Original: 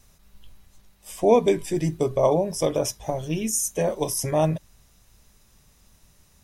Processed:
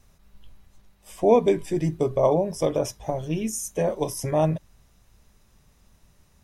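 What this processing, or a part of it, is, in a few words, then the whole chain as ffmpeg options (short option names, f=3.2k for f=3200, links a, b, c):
behind a face mask: -af "highshelf=f=3.1k:g=-7.5"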